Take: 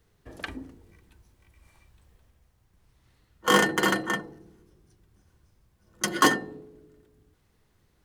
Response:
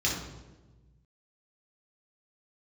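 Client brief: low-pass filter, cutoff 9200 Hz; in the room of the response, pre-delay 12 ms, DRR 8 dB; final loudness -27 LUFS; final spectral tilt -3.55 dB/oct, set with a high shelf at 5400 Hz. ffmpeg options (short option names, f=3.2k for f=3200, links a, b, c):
-filter_complex "[0:a]lowpass=9.2k,highshelf=f=5.4k:g=-5,asplit=2[a][b];[1:a]atrim=start_sample=2205,adelay=12[c];[b][c]afir=irnorm=-1:irlink=0,volume=-17.5dB[d];[a][d]amix=inputs=2:normalize=0,volume=-1.5dB"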